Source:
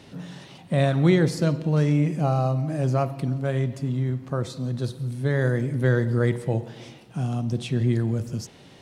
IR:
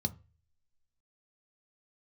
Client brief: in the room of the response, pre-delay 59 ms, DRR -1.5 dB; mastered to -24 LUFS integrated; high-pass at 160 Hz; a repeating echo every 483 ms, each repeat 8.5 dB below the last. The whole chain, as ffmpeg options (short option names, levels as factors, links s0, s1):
-filter_complex "[0:a]highpass=160,aecho=1:1:483|966|1449|1932:0.376|0.143|0.0543|0.0206,asplit=2[s0][s1];[1:a]atrim=start_sample=2205,adelay=59[s2];[s1][s2]afir=irnorm=-1:irlink=0,volume=0.944[s3];[s0][s3]amix=inputs=2:normalize=0,volume=0.376"